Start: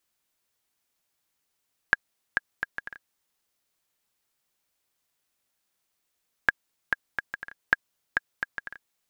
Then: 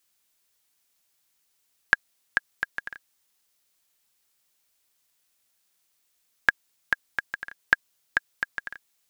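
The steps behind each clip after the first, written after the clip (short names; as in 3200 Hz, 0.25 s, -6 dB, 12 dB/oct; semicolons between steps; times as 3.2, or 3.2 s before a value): high shelf 2200 Hz +7.5 dB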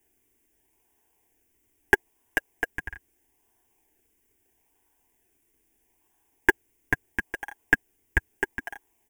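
comb 6.8 ms; in parallel at -4 dB: decimation with a swept rate 35×, swing 100% 0.77 Hz; on the sum: fixed phaser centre 850 Hz, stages 8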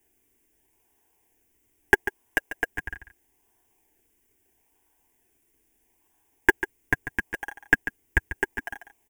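echo 0.143 s -12 dB; gain +1 dB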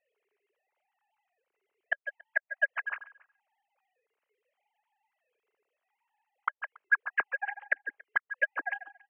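sine-wave speech; flipped gate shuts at -13 dBFS, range -36 dB; outdoor echo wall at 48 m, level -25 dB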